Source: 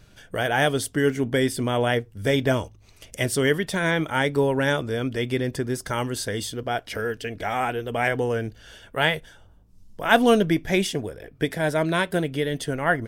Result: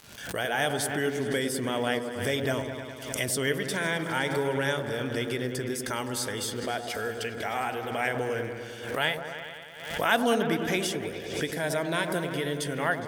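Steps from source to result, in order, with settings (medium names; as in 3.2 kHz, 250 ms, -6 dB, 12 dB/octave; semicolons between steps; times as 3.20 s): gate with hold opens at -40 dBFS; high-pass 61 Hz; tilt EQ +1.5 dB/octave; in parallel at -2 dB: compression, threshold -28 dBFS, peak gain reduction 16 dB; on the sum: crackle 180 per s -35 dBFS; on a send: delay with an opening low-pass 103 ms, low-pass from 750 Hz, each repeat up 1 oct, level -6 dB; on the sum: swell ahead of each attack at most 66 dB/s; trim -8.5 dB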